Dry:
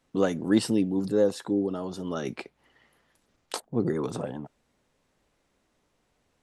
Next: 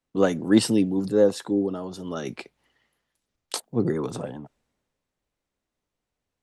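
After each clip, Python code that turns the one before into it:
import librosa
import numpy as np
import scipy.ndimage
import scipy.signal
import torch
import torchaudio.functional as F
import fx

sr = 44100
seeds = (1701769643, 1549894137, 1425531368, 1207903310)

y = fx.band_widen(x, sr, depth_pct=40)
y = y * 10.0 ** (2.5 / 20.0)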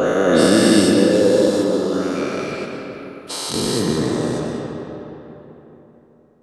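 y = fx.spec_dilate(x, sr, span_ms=480)
y = fx.rev_freeverb(y, sr, rt60_s=3.6, hf_ratio=0.6, predelay_ms=90, drr_db=1.0)
y = y * 10.0 ** (-3.5 / 20.0)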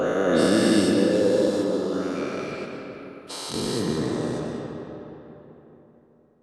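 y = fx.high_shelf(x, sr, hz=5700.0, db=-4.5)
y = y * 10.0 ** (-6.0 / 20.0)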